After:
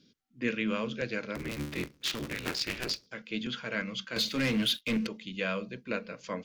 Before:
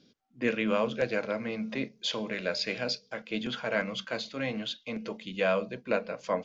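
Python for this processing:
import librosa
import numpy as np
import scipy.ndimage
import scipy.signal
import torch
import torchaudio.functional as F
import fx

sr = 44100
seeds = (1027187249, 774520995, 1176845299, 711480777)

y = fx.cycle_switch(x, sr, every=3, mode='inverted', at=(1.35, 3.07))
y = fx.leveller(y, sr, passes=3, at=(4.16, 5.07))
y = fx.peak_eq(y, sr, hz=720.0, db=-12.5, octaves=1.1)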